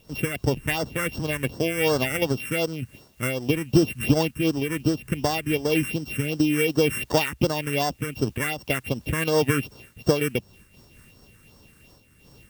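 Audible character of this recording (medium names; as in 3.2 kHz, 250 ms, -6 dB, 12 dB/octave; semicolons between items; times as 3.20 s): a buzz of ramps at a fixed pitch in blocks of 16 samples; phasing stages 4, 2.7 Hz, lowest notch 700–2400 Hz; a quantiser's noise floor 10-bit, dither triangular; random flutter of the level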